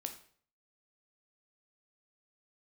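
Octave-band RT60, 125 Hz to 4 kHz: 0.60, 0.55, 0.55, 0.50, 0.45, 0.45 seconds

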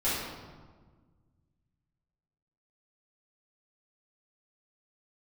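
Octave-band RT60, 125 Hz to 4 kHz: 2.6, 2.1, 1.6, 1.4, 1.1, 0.90 seconds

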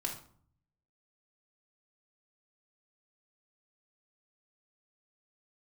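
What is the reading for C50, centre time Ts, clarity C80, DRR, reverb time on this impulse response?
7.0 dB, 22 ms, 12.0 dB, −1.0 dB, 0.55 s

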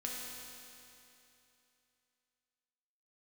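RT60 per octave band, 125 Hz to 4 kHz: 2.9, 2.9, 2.9, 2.9, 2.9, 2.8 seconds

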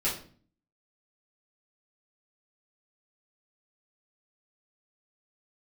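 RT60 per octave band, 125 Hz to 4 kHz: 0.70, 0.70, 0.50, 0.40, 0.40, 0.35 seconds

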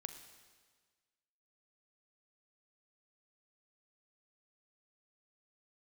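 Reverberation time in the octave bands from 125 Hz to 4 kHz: 1.6, 1.5, 1.5, 1.5, 1.5, 1.5 seconds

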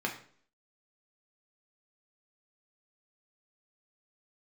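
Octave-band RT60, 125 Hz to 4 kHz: 0.55, 0.60, 0.55, 0.50, 0.45, 0.45 seconds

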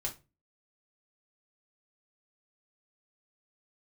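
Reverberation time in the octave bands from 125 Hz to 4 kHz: 0.45, 0.40, 0.30, 0.25, 0.25, 0.20 seconds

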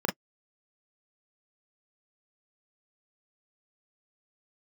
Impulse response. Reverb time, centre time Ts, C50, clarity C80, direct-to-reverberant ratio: non-exponential decay, 21 ms, 20.5 dB, 45.0 dB, 0.0 dB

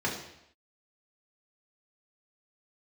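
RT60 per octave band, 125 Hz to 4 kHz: 0.75, 0.75, 0.75, 0.80, 0.80, 0.75 seconds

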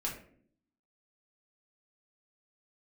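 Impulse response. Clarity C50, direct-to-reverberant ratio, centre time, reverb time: 7.0 dB, −3.0 dB, 27 ms, 0.55 s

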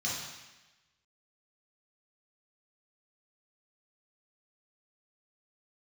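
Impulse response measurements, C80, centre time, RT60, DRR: 3.5 dB, 72 ms, 1.1 s, −6.5 dB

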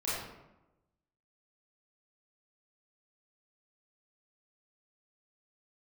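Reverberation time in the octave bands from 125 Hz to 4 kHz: 1.2, 1.1, 1.0, 0.95, 0.75, 0.55 seconds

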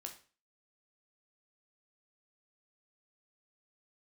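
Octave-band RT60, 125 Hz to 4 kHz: 0.40, 0.40, 0.40, 0.40, 0.35, 0.35 seconds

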